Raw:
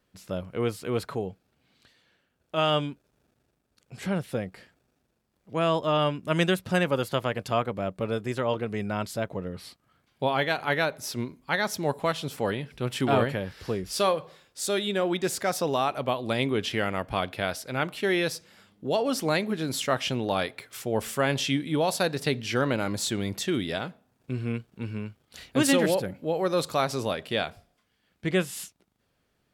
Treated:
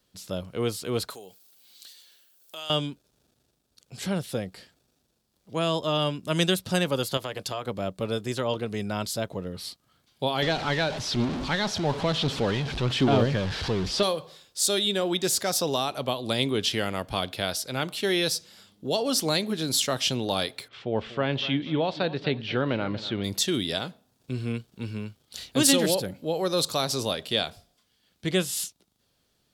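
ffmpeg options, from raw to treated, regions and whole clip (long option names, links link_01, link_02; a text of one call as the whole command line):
ffmpeg -i in.wav -filter_complex "[0:a]asettb=1/sr,asplit=3[link_01][link_02][link_03];[link_01]atrim=end=1.104[link_04];[link_02]atrim=start=1.1:end=2.7,asetpts=PTS-STARTPTS,afade=type=in:duration=0.004:curve=qsin,afade=type=out:start_time=1.596:duration=0.004:curve=qsin,highpass=frequency=160:poles=1,aemphasis=mode=production:type=riaa,acompressor=threshold=-44dB:ratio=2.5:attack=3.2:release=140:knee=1:detection=peak[link_05];[link_03]atrim=start=2.696[link_06];[link_04][link_05]acrossfade=duration=0.004:curve1=hsin:curve2=qsin[link_07];[link_07][link_06]acrossfade=duration=0.004:curve1=qsin:curve2=hsin,asettb=1/sr,asplit=3[link_08][link_09][link_10];[link_08]atrim=end=7.174[link_11];[link_09]atrim=start=7.17:end=7.66,asetpts=PTS-STARTPTS,afade=type=in:duration=0.004:curve=qsin,afade=type=out:start_time=0.486:duration=0.004:curve=qsin,acompressor=threshold=-26dB:ratio=5:attack=3.2:release=140:knee=1:detection=peak,lowshelf=frequency=120:gain=-8,bandreject=frequency=230:width=7[link_12];[link_10]atrim=start=7.656[link_13];[link_11][link_12]acrossfade=duration=0.004:curve1=hsin:curve2=qsin[link_14];[link_14][link_13]acrossfade=duration=0.004:curve1=qsin:curve2=hsin,asettb=1/sr,asplit=3[link_15][link_16][link_17];[link_15]atrim=end=10.424[link_18];[link_16]atrim=start=10.42:end=14.03,asetpts=PTS-STARTPTS,afade=type=in:duration=0.004:curve=qsin,afade=type=out:start_time=3.606:duration=0.004:curve=qsin,aeval=exprs='val(0)+0.5*0.0422*sgn(val(0))':channel_layout=same,lowpass=3100,aphaser=in_gain=1:out_gain=1:delay=1.3:decay=0.26:speed=1.1:type=sinusoidal[link_19];[link_17]atrim=start=14.026[link_20];[link_18][link_19]acrossfade=duration=0.004:curve1=hsin:curve2=qsin[link_21];[link_21][link_20]acrossfade=duration=0.004:curve1=qsin:curve2=hsin,asettb=1/sr,asplit=3[link_22][link_23][link_24];[link_22]atrim=end=20.684[link_25];[link_23]atrim=start=20.68:end=23.24,asetpts=PTS-STARTPTS,afade=type=in:duration=0.004:curve=qsin,afade=type=out:start_time=2.556:duration=0.004:curve=qsin,lowpass=frequency=3000:width=0.5412,lowpass=frequency=3000:width=1.3066,aecho=1:1:240|480|720:0.158|0.0475|0.0143,atrim=end_sample=112896[link_26];[link_24]atrim=start=23.236[link_27];[link_25][link_26]acrossfade=duration=0.004:curve1=hsin:curve2=qsin[link_28];[link_28][link_27]acrossfade=duration=0.004:curve1=qsin:curve2=hsin,highshelf=frequency=2900:width_type=q:width=1.5:gain=7,acrossover=split=480|3000[link_29][link_30][link_31];[link_30]acompressor=threshold=-26dB:ratio=6[link_32];[link_29][link_32][link_31]amix=inputs=3:normalize=0" out.wav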